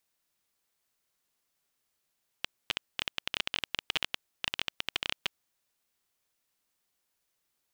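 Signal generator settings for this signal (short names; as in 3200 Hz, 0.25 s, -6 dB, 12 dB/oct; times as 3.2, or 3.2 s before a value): random clicks 15/s -11.5 dBFS 2.98 s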